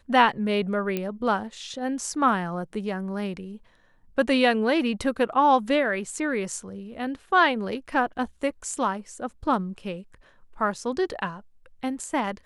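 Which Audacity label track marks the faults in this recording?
0.970000	0.970000	click −14 dBFS

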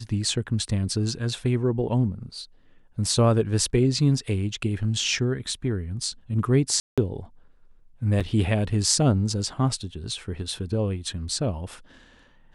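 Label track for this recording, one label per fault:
6.800000	6.980000	drop-out 176 ms
8.200000	8.210000	drop-out 6 ms

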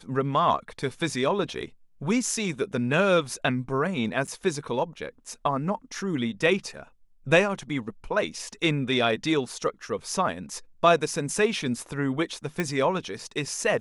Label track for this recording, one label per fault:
4.270000	4.280000	drop-out 6.9 ms
12.600000	12.600000	click −13 dBFS

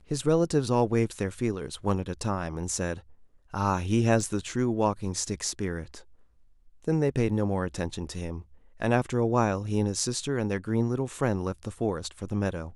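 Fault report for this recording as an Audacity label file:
4.210000	4.210000	drop-out 2.2 ms

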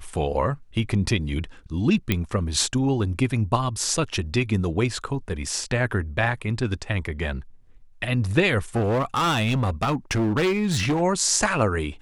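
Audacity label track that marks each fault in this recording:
2.120000	2.120000	click −8 dBFS
8.760000	11.020000	clipping −18.5 dBFS

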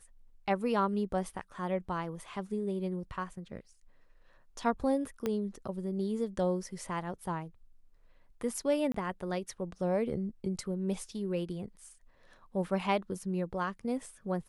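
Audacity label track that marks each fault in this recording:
5.260000	5.260000	click −19 dBFS
8.920000	8.940000	drop-out 24 ms

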